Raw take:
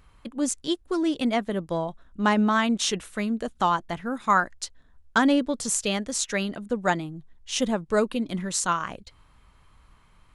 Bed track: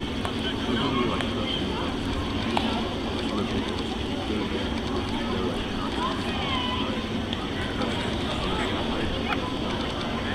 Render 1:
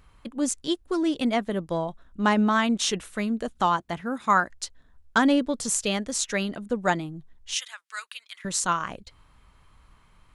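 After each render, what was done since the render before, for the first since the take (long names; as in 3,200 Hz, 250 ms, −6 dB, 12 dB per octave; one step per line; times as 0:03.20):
0:03.66–0:04.50: high-pass filter 46 Hz
0:07.54–0:08.45: high-pass filter 1,500 Hz 24 dB per octave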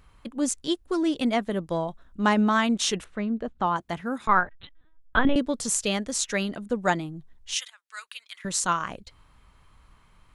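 0:03.04–0:03.76: head-to-tape spacing loss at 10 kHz 29 dB
0:04.27–0:05.36: linear-prediction vocoder at 8 kHz pitch kept
0:07.70–0:08.19: fade in, from −16.5 dB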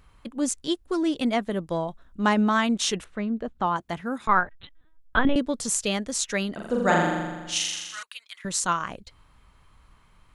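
0:06.54–0:08.03: flutter between parallel walls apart 7.1 metres, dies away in 1.3 s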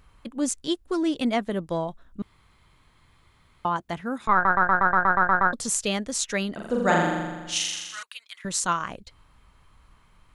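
0:02.22–0:03.65: fill with room tone
0:04.33: stutter in place 0.12 s, 10 plays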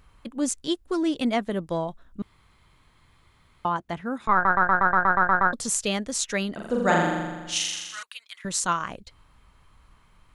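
0:03.72–0:04.46: high-shelf EQ 4,200 Hz −6 dB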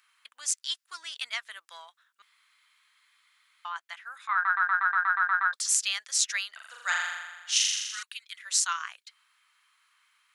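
high-pass filter 1,400 Hz 24 dB per octave
dynamic equaliser 5,200 Hz, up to +5 dB, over −46 dBFS, Q 1.8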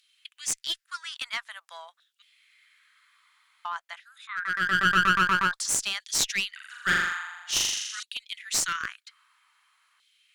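auto-filter high-pass saw down 0.5 Hz 490–3,700 Hz
asymmetric clip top −24 dBFS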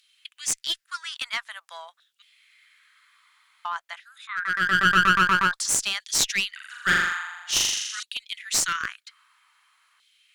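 level +3 dB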